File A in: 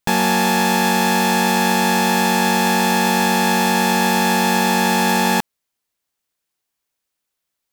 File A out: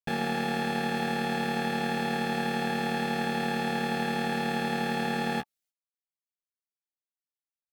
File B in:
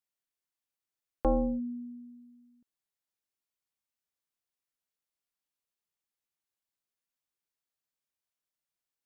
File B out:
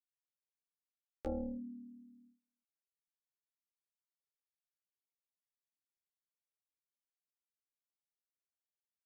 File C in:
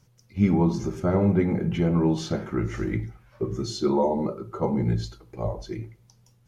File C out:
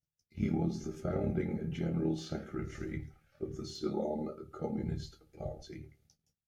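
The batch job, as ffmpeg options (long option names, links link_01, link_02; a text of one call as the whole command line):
ffmpeg -i in.wav -filter_complex "[0:a]agate=range=-23dB:threshold=-56dB:ratio=16:detection=peak,acrossover=split=4100[link_01][link_02];[link_02]acompressor=threshold=-41dB:ratio=4:attack=1:release=60[link_03];[link_01][link_03]amix=inputs=2:normalize=0,acrossover=split=2900[link_04][link_05];[link_04]tremolo=f=37:d=0.857[link_06];[link_05]asoftclip=type=hard:threshold=-33.5dB[link_07];[link_06][link_07]amix=inputs=2:normalize=0,asuperstop=centerf=1000:order=8:qfactor=3.4,asplit=2[link_08][link_09];[link_09]aecho=0:1:13|28:0.562|0.158[link_10];[link_08][link_10]amix=inputs=2:normalize=0,volume=-9dB" out.wav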